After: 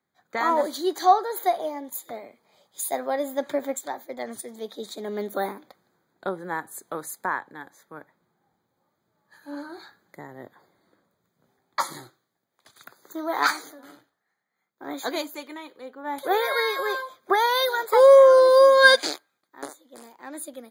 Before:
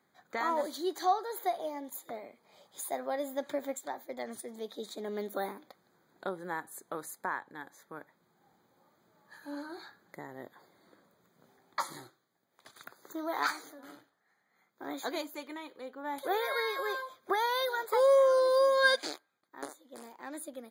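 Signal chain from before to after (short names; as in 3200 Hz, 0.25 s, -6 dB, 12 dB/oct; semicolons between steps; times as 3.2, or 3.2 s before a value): three-band expander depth 40%; gain +7.5 dB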